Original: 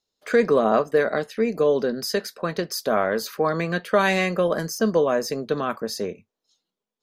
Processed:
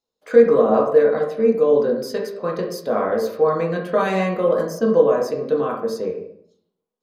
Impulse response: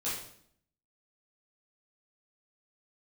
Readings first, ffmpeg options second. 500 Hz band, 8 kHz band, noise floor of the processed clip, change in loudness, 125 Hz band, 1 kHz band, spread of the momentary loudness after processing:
+5.5 dB, n/a, -83 dBFS, +4.0 dB, +0.5 dB, +1.0 dB, 11 LU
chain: -filter_complex "[0:a]asplit=2[a][b];[b]equalizer=f=125:t=o:w=1:g=7,equalizer=f=250:t=o:w=1:g=7,equalizer=f=500:t=o:w=1:g=11,equalizer=f=1k:t=o:w=1:g=11,equalizer=f=4k:t=o:w=1:g=5[c];[1:a]atrim=start_sample=2205,lowpass=2.7k[d];[c][d]afir=irnorm=-1:irlink=0,volume=-9dB[e];[a][e]amix=inputs=2:normalize=0,volume=-7dB"

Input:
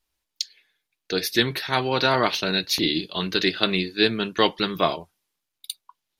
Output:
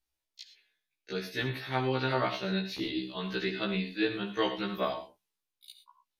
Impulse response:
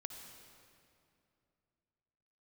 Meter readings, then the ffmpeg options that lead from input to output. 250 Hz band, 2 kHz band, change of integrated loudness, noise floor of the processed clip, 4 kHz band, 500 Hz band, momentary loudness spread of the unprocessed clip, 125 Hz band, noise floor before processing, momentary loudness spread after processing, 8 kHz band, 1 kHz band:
-7.0 dB, -9.5 dB, -9.5 dB, under -85 dBFS, -14.0 dB, -8.0 dB, 15 LU, -4.5 dB, -83 dBFS, 15 LU, under -15 dB, -9.0 dB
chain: -filter_complex "[0:a]acrossover=split=3300[a][b];[b]acompressor=threshold=-39dB:ratio=4:attack=1:release=60[c];[a][c]amix=inputs=2:normalize=0[d];[1:a]atrim=start_sample=2205,afade=t=out:st=0.17:d=0.01,atrim=end_sample=7938[e];[d][e]afir=irnorm=-1:irlink=0,afftfilt=real='re*1.73*eq(mod(b,3),0)':imag='im*1.73*eq(mod(b,3),0)':win_size=2048:overlap=0.75,volume=-2.5dB"

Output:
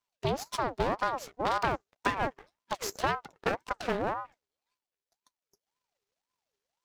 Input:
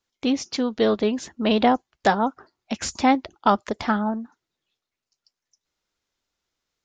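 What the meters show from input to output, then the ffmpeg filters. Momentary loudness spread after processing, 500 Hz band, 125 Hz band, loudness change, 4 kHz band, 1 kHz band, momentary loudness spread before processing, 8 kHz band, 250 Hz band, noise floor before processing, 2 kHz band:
6 LU, -9.0 dB, -3.5 dB, -9.5 dB, -9.5 dB, -7.5 dB, 9 LU, -7.5 dB, -17.0 dB, under -85 dBFS, -4.5 dB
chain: -af "aeval=exprs='max(val(0),0)':c=same,acompressor=threshold=-21dB:ratio=5,aeval=exprs='val(0)*sin(2*PI*710*n/s+710*0.45/1.9*sin(2*PI*1.9*n/s))':c=same"

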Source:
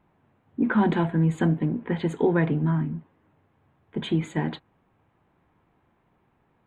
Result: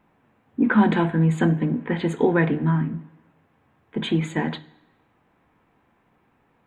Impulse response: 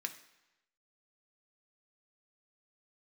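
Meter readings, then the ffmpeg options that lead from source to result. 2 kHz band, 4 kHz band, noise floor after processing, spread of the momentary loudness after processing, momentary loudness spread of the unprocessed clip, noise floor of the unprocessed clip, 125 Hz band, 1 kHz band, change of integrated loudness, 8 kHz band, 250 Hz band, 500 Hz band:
+5.5 dB, +5.0 dB, -65 dBFS, 13 LU, 13 LU, -68 dBFS, +2.0 dB, +4.0 dB, +3.0 dB, n/a, +3.0 dB, +2.5 dB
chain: -filter_complex "[0:a]bandreject=f=50:t=h:w=6,bandreject=f=100:t=h:w=6,bandreject=f=150:t=h:w=6,asplit=2[a][b];[1:a]atrim=start_sample=2205[c];[b][c]afir=irnorm=-1:irlink=0,volume=-0.5dB[d];[a][d]amix=inputs=2:normalize=0"

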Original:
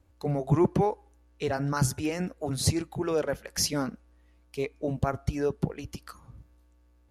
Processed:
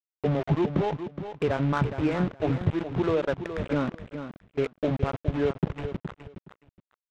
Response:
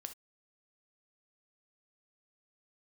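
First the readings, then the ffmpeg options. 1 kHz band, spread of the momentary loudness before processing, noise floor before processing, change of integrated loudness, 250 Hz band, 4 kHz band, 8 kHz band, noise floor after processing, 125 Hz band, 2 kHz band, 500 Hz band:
+0.5 dB, 13 LU, -62 dBFS, +1.0 dB, +2.5 dB, -7.5 dB, under -20 dB, under -85 dBFS, +2.0 dB, +2.5 dB, +2.0 dB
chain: -filter_complex "[0:a]aemphasis=mode=reproduction:type=75fm,bandreject=f=790:w=12,adynamicequalizer=threshold=0.01:dfrequency=440:dqfactor=2.3:tfrequency=440:tqfactor=2.3:attack=5:release=100:ratio=0.375:range=1.5:mode=cutabove:tftype=bell,acompressor=threshold=-27dB:ratio=10,aresample=8000,aeval=exprs='val(0)*gte(abs(val(0)),0.015)':c=same,aresample=44100,adynamicsmooth=sensitivity=6.5:basefreq=1.3k,asplit=2[a][b];[b]aecho=0:1:418|836:0.316|0.0538[c];[a][c]amix=inputs=2:normalize=0,volume=6.5dB"

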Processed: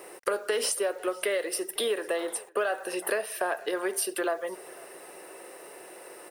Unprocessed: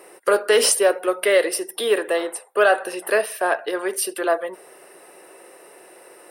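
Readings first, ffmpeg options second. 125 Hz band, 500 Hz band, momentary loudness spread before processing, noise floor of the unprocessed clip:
n/a, -10.0 dB, 8 LU, -48 dBFS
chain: -af "acompressor=threshold=-26dB:ratio=6,acrusher=bits=8:mix=0:aa=0.5,aecho=1:1:500:0.0668"

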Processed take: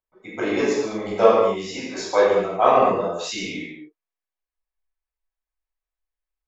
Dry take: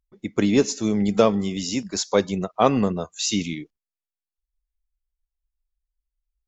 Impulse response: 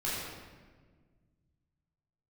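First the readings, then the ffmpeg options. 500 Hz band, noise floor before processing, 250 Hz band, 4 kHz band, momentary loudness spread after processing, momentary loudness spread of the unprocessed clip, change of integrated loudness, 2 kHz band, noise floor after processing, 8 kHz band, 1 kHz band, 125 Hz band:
+4.5 dB, under -85 dBFS, -6.5 dB, -3.0 dB, 14 LU, 8 LU, +2.0 dB, +4.5 dB, under -85 dBFS, n/a, +6.5 dB, -9.5 dB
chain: -filter_complex "[0:a]acrossover=split=440 2200:gain=0.0794 1 0.224[a][b][c];[a][b][c]amix=inputs=3:normalize=0,bandreject=f=1.4k:w=10[d];[1:a]atrim=start_sample=2205,afade=t=out:st=0.31:d=0.01,atrim=end_sample=14112[e];[d][e]afir=irnorm=-1:irlink=0,volume=2dB"

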